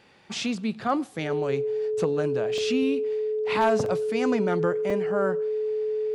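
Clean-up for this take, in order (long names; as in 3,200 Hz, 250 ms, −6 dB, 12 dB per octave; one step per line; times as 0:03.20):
clipped peaks rebuilt −13 dBFS
notch filter 430 Hz, Q 30
repair the gap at 0:02.58/0:03.86/0:04.90, 1.9 ms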